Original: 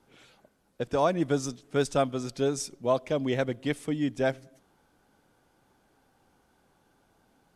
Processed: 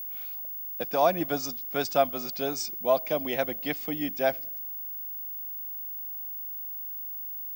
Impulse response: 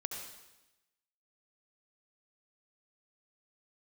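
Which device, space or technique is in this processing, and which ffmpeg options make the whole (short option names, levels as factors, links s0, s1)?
old television with a line whistle: -af "highpass=f=180:w=0.5412,highpass=f=180:w=1.3066,equalizer=f=260:t=q:w=4:g=-5,equalizer=f=410:t=q:w=4:g=-6,equalizer=f=730:t=q:w=4:g=7,equalizer=f=2400:t=q:w=4:g=4,equalizer=f=4800:t=q:w=4:g=8,lowpass=f=7300:w=0.5412,lowpass=f=7300:w=1.3066,aeval=exprs='val(0)+0.02*sin(2*PI*15625*n/s)':c=same"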